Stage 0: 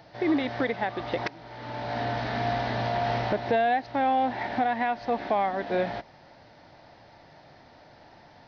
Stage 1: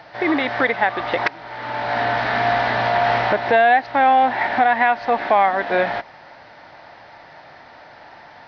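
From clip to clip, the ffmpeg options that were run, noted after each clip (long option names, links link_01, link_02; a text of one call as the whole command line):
ffmpeg -i in.wav -af "equalizer=frequency=1500:width=0.39:gain=14" out.wav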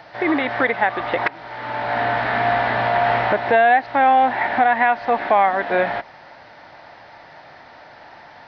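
ffmpeg -i in.wav -filter_complex "[0:a]acrossover=split=3700[link_01][link_02];[link_02]acompressor=threshold=-52dB:ratio=4:attack=1:release=60[link_03];[link_01][link_03]amix=inputs=2:normalize=0" out.wav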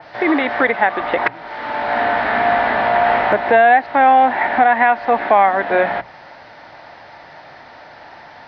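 ffmpeg -i in.wav -filter_complex "[0:a]bandreject=frequency=60:width_type=h:width=6,bandreject=frequency=120:width_type=h:width=6,bandreject=frequency=180:width_type=h:width=6,acrossover=split=140[link_01][link_02];[link_01]aeval=exprs='(mod(44.7*val(0)+1,2)-1)/44.7':channel_layout=same[link_03];[link_03][link_02]amix=inputs=2:normalize=0,adynamicequalizer=threshold=0.0178:dfrequency=3300:dqfactor=0.7:tfrequency=3300:tqfactor=0.7:attack=5:release=100:ratio=0.375:range=3:mode=cutabove:tftype=highshelf,volume=3.5dB" out.wav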